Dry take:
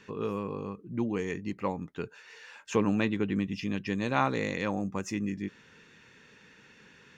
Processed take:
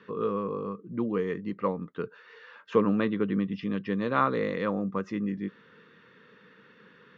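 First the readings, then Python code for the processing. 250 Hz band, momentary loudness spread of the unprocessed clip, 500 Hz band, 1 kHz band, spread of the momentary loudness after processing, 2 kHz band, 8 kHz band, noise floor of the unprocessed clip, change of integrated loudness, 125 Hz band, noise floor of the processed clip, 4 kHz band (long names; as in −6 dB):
+1.5 dB, 13 LU, +4.0 dB, +2.5 dB, 12 LU, −1.0 dB, can't be measured, −58 dBFS, +2.0 dB, 0.0 dB, −58 dBFS, −4.0 dB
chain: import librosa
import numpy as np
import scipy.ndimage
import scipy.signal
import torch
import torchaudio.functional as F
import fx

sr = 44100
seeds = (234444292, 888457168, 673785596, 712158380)

y = fx.cabinet(x, sr, low_hz=130.0, low_slope=12, high_hz=3700.0, hz=(190.0, 480.0, 800.0, 1200.0, 2500.0), db=(4, 7, -7, 9, -8))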